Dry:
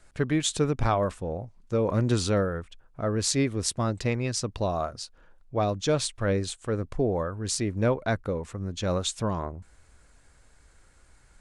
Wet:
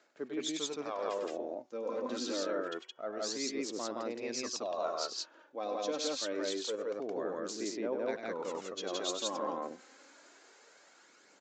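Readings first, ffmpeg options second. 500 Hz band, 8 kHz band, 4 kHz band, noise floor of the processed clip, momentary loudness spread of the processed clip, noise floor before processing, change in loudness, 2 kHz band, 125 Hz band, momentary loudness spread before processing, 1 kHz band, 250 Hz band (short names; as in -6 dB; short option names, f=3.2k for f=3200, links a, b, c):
-7.0 dB, -8.0 dB, -4.5 dB, -63 dBFS, 7 LU, -58 dBFS, -9.0 dB, -8.5 dB, -32.0 dB, 10 LU, -7.5 dB, -10.5 dB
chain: -filter_complex "[0:a]equalizer=f=4.7k:t=o:w=2:g=5,dynaudnorm=f=620:g=7:m=7.5dB,aphaser=in_gain=1:out_gain=1:delay=3.9:decay=0.52:speed=0.26:type=sinusoidal,equalizer=f=450:t=o:w=2.6:g=4.5,areverse,acompressor=threshold=-30dB:ratio=5,areverse,bandreject=f=370.8:t=h:w=4,bandreject=f=741.6:t=h:w=4,bandreject=f=1.1124k:t=h:w=4,bandreject=f=1.4832k:t=h:w=4,bandreject=f=1.854k:t=h:w=4,bandreject=f=2.2248k:t=h:w=4,bandreject=f=2.5956k:t=h:w=4,bandreject=f=2.9664k:t=h:w=4,bandreject=f=3.3372k:t=h:w=4,aresample=16000,aresample=44100,highpass=f=270:w=0.5412,highpass=f=270:w=1.3066,asplit=2[a][b];[b]aecho=0:1:99.13|169.1:0.447|1[c];[a][c]amix=inputs=2:normalize=0,volume=-6dB"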